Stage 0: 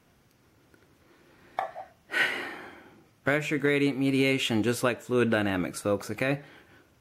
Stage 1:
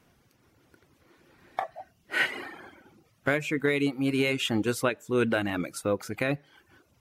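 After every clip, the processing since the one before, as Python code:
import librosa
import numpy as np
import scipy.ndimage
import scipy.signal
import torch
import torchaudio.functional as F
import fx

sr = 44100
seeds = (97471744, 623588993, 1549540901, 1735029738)

y = fx.dereverb_blind(x, sr, rt60_s=0.62)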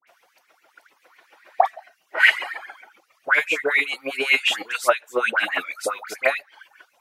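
y = fx.filter_lfo_highpass(x, sr, shape='sine', hz=7.3, low_hz=580.0, high_hz=2500.0, q=3.8)
y = fx.dispersion(y, sr, late='highs', ms=74.0, hz=1600.0)
y = F.gain(torch.from_numpy(y), 4.5).numpy()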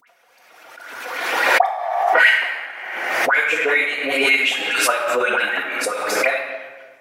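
y = fx.room_shoebox(x, sr, seeds[0], volume_m3=1500.0, walls='mixed', distance_m=1.8)
y = fx.pre_swell(y, sr, db_per_s=34.0)
y = F.gain(torch.from_numpy(y), -1.5).numpy()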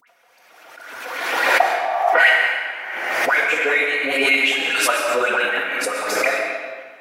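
y = fx.rev_freeverb(x, sr, rt60_s=1.3, hf_ratio=0.85, predelay_ms=85, drr_db=6.0)
y = F.gain(torch.from_numpy(y), -1.0).numpy()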